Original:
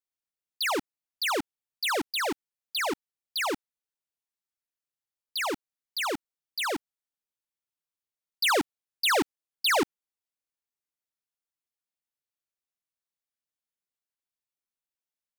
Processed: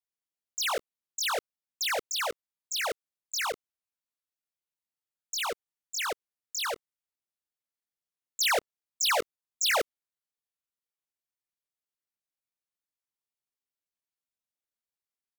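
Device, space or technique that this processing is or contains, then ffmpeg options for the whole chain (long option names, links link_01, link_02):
chipmunk voice: -af "asetrate=68011,aresample=44100,atempo=0.64842,volume=-1.5dB"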